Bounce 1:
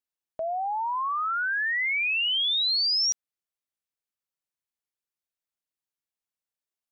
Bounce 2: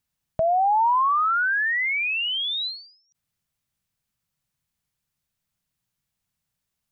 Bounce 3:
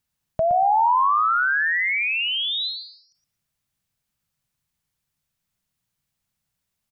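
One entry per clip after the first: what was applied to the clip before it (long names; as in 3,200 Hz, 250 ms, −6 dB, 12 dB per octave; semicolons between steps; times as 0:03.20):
low shelf with overshoot 230 Hz +12.5 dB, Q 1.5; compressor whose output falls as the input rises −29 dBFS, ratio −0.5; every ending faded ahead of time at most 110 dB per second; level +7 dB
repeating echo 117 ms, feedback 18%, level −8 dB; level +1 dB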